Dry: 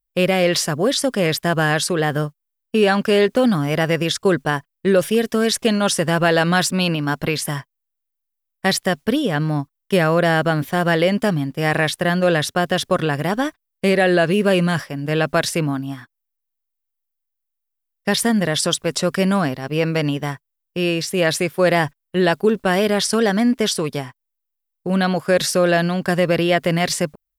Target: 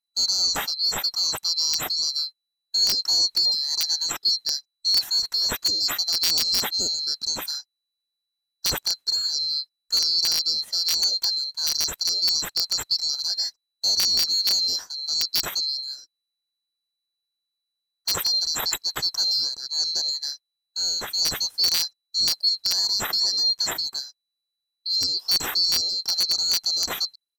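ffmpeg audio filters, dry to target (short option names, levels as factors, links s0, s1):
-af "afftfilt=real='real(if(lt(b,736),b+184*(1-2*mod(floor(b/184),2)),b),0)':imag='imag(if(lt(b,736),b+184*(1-2*mod(floor(b/184),2)),b),0)':win_size=2048:overlap=0.75,aresample=32000,aresample=44100,aeval=exprs='(mod(1.78*val(0)+1,2)-1)/1.78':c=same,volume=0.501"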